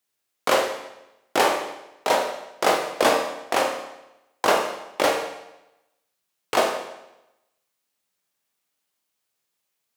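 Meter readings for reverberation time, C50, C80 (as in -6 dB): 0.90 s, 5.5 dB, 8.5 dB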